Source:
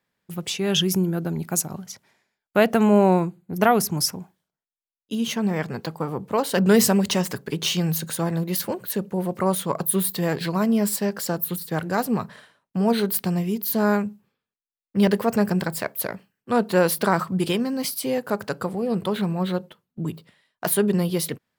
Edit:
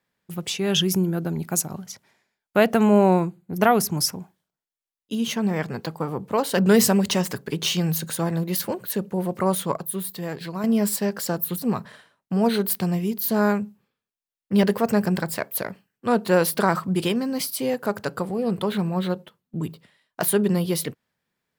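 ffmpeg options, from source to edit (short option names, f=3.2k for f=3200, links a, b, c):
-filter_complex "[0:a]asplit=4[a][b][c][d];[a]atrim=end=9.772[e];[b]atrim=start=9.768:end=10.642,asetpts=PTS-STARTPTS,volume=-7dB[f];[c]atrim=start=10.638:end=11.622[g];[d]atrim=start=12.058[h];[e][f]acrossfade=d=0.004:c1=hsin:c2=hsin[i];[i][g]acrossfade=d=0.004:c1=hsin:c2=hsin[j];[j][h]acrossfade=d=0.004:c1=hsin:c2=hsin"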